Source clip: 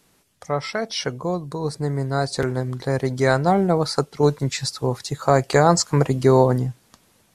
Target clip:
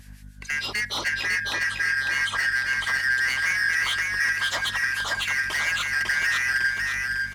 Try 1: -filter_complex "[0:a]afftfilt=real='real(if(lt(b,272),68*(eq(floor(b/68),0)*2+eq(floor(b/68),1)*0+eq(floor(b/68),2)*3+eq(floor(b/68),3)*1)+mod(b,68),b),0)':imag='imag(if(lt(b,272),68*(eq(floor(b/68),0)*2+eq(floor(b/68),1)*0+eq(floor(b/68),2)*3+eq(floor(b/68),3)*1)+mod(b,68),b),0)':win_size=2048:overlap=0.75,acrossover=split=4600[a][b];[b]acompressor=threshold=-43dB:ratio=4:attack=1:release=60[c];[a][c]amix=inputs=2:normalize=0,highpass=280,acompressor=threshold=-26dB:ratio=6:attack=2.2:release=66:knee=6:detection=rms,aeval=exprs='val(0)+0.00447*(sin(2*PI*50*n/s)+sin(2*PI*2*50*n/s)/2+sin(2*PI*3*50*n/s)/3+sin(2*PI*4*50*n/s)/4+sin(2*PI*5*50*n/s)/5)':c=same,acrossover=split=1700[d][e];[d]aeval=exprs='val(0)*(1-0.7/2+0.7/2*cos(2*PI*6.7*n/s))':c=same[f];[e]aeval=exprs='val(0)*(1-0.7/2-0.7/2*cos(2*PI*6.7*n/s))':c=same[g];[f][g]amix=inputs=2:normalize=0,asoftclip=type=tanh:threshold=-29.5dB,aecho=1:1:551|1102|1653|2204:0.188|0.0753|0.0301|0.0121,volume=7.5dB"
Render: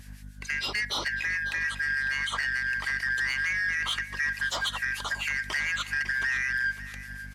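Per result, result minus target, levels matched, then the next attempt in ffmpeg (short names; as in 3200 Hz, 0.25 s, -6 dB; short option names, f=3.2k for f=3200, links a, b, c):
echo-to-direct -12 dB; compressor: peak gain reduction +7 dB
-filter_complex "[0:a]afftfilt=real='real(if(lt(b,272),68*(eq(floor(b/68),0)*2+eq(floor(b/68),1)*0+eq(floor(b/68),2)*3+eq(floor(b/68),3)*1)+mod(b,68),b),0)':imag='imag(if(lt(b,272),68*(eq(floor(b/68),0)*2+eq(floor(b/68),1)*0+eq(floor(b/68),2)*3+eq(floor(b/68),3)*1)+mod(b,68),b),0)':win_size=2048:overlap=0.75,acrossover=split=4600[a][b];[b]acompressor=threshold=-43dB:ratio=4:attack=1:release=60[c];[a][c]amix=inputs=2:normalize=0,highpass=280,acompressor=threshold=-26dB:ratio=6:attack=2.2:release=66:knee=6:detection=rms,aeval=exprs='val(0)+0.00447*(sin(2*PI*50*n/s)+sin(2*PI*2*50*n/s)/2+sin(2*PI*3*50*n/s)/3+sin(2*PI*4*50*n/s)/4+sin(2*PI*5*50*n/s)/5)':c=same,acrossover=split=1700[d][e];[d]aeval=exprs='val(0)*(1-0.7/2+0.7/2*cos(2*PI*6.7*n/s))':c=same[f];[e]aeval=exprs='val(0)*(1-0.7/2-0.7/2*cos(2*PI*6.7*n/s))':c=same[g];[f][g]amix=inputs=2:normalize=0,asoftclip=type=tanh:threshold=-29.5dB,aecho=1:1:551|1102|1653|2204|2755:0.75|0.3|0.12|0.048|0.0192,volume=7.5dB"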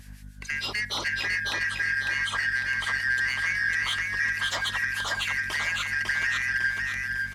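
compressor: peak gain reduction +7 dB
-filter_complex "[0:a]afftfilt=real='real(if(lt(b,272),68*(eq(floor(b/68),0)*2+eq(floor(b/68),1)*0+eq(floor(b/68),2)*3+eq(floor(b/68),3)*1)+mod(b,68),b),0)':imag='imag(if(lt(b,272),68*(eq(floor(b/68),0)*2+eq(floor(b/68),1)*0+eq(floor(b/68),2)*3+eq(floor(b/68),3)*1)+mod(b,68),b),0)':win_size=2048:overlap=0.75,acrossover=split=4600[a][b];[b]acompressor=threshold=-43dB:ratio=4:attack=1:release=60[c];[a][c]amix=inputs=2:normalize=0,highpass=280,acompressor=threshold=-17.5dB:ratio=6:attack=2.2:release=66:knee=6:detection=rms,aeval=exprs='val(0)+0.00447*(sin(2*PI*50*n/s)+sin(2*PI*2*50*n/s)/2+sin(2*PI*3*50*n/s)/3+sin(2*PI*4*50*n/s)/4+sin(2*PI*5*50*n/s)/5)':c=same,acrossover=split=1700[d][e];[d]aeval=exprs='val(0)*(1-0.7/2+0.7/2*cos(2*PI*6.7*n/s))':c=same[f];[e]aeval=exprs='val(0)*(1-0.7/2-0.7/2*cos(2*PI*6.7*n/s))':c=same[g];[f][g]amix=inputs=2:normalize=0,asoftclip=type=tanh:threshold=-29.5dB,aecho=1:1:551|1102|1653|2204|2755:0.75|0.3|0.12|0.048|0.0192,volume=7.5dB"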